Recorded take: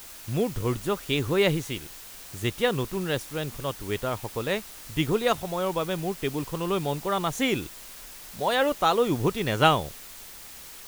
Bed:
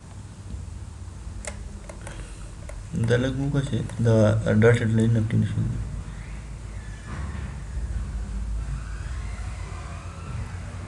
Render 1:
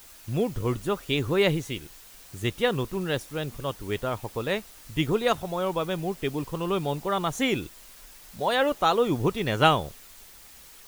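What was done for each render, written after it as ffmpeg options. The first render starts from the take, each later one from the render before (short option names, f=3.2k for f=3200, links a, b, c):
-af "afftdn=nr=6:nf=-44"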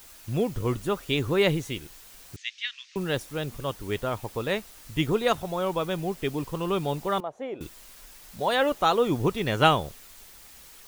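-filter_complex "[0:a]asettb=1/sr,asplit=3[a][b][c];[a]atrim=end=2.364[d];[b]atrim=start=2.36:end=2.96,asetpts=PTS-STARTPTS,afade=t=in:d=0.004:c=qsin,afade=t=out:st=0.596:d=0.004:c=qsin,asuperpass=centerf=3500:order=8:qfactor=0.8[e];[c]atrim=start=2.956[f];[d][e]acrossfade=d=0.004:c1=hsin:c2=qsin[g];[g][f]acrossfade=d=0.004:c1=qsin:c2=hsin,asettb=1/sr,asplit=3[h][i][j];[h]atrim=end=7.204[k];[i]atrim=start=7.2:end=7.61,asetpts=PTS-STARTPTS,afade=t=in:d=0.004:c=qsin,afade=t=out:st=0.406:d=0.004:c=qsin,bandpass=f=600:t=q:w=2.5[l];[j]atrim=start=7.606[m];[k][l]acrossfade=d=0.004:c1=hsin:c2=qsin[n];[n][m]acrossfade=d=0.004:c1=qsin:c2=hsin"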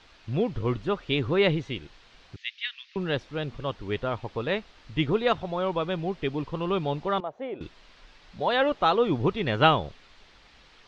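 -af "lowpass=f=4.3k:w=0.5412,lowpass=f=4.3k:w=1.3066"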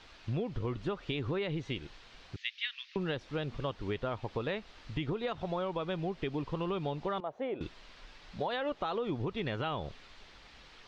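-af "alimiter=limit=-17dB:level=0:latency=1:release=90,acompressor=threshold=-31dB:ratio=6"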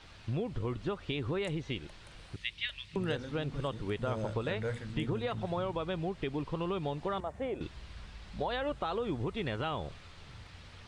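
-filter_complex "[1:a]volume=-19dB[a];[0:a][a]amix=inputs=2:normalize=0"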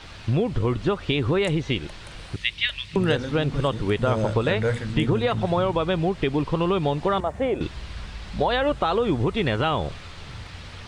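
-af "volume=12dB"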